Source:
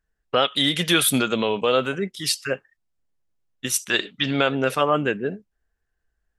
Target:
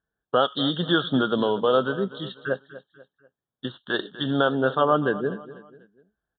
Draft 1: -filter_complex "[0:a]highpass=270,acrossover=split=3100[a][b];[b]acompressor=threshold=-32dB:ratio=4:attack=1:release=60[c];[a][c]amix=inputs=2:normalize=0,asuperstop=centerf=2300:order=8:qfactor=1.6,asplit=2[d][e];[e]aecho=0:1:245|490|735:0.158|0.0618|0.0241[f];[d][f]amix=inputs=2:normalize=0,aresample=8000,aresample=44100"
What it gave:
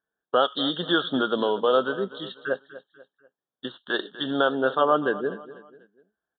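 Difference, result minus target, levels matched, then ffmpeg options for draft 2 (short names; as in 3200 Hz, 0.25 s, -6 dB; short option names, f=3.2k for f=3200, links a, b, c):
125 Hz band -9.0 dB
-filter_complex "[0:a]highpass=99,acrossover=split=3100[a][b];[b]acompressor=threshold=-32dB:ratio=4:attack=1:release=60[c];[a][c]amix=inputs=2:normalize=0,asuperstop=centerf=2300:order=8:qfactor=1.6,asplit=2[d][e];[e]aecho=0:1:245|490|735:0.158|0.0618|0.0241[f];[d][f]amix=inputs=2:normalize=0,aresample=8000,aresample=44100"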